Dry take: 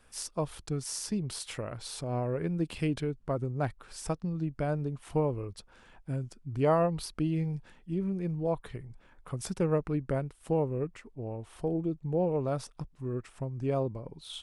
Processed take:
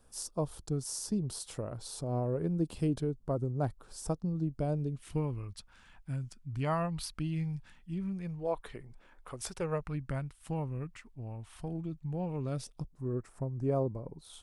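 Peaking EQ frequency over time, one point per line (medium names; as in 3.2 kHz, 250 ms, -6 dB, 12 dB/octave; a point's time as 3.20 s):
peaking EQ -14 dB 1.4 oct
4.49 s 2.2 kHz
5.44 s 440 Hz
8.14 s 440 Hz
8.88 s 70 Hz
10.02 s 440 Hz
12.27 s 440 Hz
13.02 s 3 kHz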